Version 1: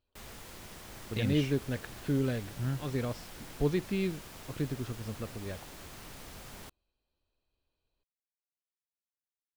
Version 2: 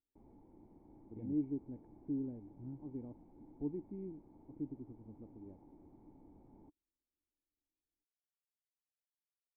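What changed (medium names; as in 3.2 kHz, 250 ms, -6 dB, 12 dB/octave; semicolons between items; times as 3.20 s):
speech -4.0 dB; master: add cascade formant filter u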